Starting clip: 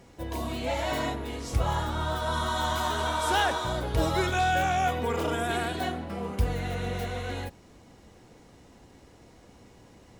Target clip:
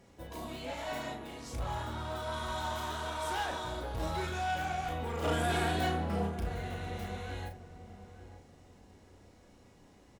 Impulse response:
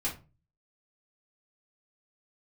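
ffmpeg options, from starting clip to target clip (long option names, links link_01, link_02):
-filter_complex "[0:a]asoftclip=type=tanh:threshold=-25.5dB,asplit=3[link_01][link_02][link_03];[link_01]afade=type=out:start_time=5.22:duration=0.02[link_04];[link_02]acontrast=88,afade=type=in:start_time=5.22:duration=0.02,afade=type=out:start_time=6.26:duration=0.02[link_05];[link_03]afade=type=in:start_time=6.26:duration=0.02[link_06];[link_04][link_05][link_06]amix=inputs=3:normalize=0,asplit=2[link_07][link_08];[link_08]adelay=35,volume=-5dB[link_09];[link_07][link_09]amix=inputs=2:normalize=0,asplit=2[link_10][link_11];[link_11]adelay=891,lowpass=frequency=860:poles=1,volume=-11dB,asplit=2[link_12][link_13];[link_13]adelay=891,lowpass=frequency=860:poles=1,volume=0.3,asplit=2[link_14][link_15];[link_15]adelay=891,lowpass=frequency=860:poles=1,volume=0.3[link_16];[link_10][link_12][link_14][link_16]amix=inputs=4:normalize=0,asplit=2[link_17][link_18];[1:a]atrim=start_sample=2205,asetrate=30429,aresample=44100[link_19];[link_18][link_19]afir=irnorm=-1:irlink=0,volume=-18.5dB[link_20];[link_17][link_20]amix=inputs=2:normalize=0,volume=-8.5dB"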